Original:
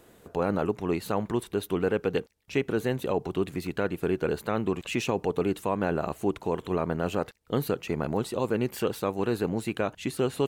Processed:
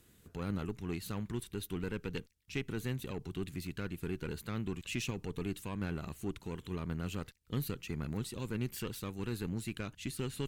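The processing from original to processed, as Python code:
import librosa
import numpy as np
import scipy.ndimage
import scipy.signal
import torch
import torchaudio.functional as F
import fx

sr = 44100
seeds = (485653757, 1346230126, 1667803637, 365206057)

y = fx.cheby_harmonics(x, sr, harmonics=(4,), levels_db=(-21,), full_scale_db=-13.0)
y = fx.tone_stack(y, sr, knobs='6-0-2')
y = F.gain(torch.from_numpy(y), 10.5).numpy()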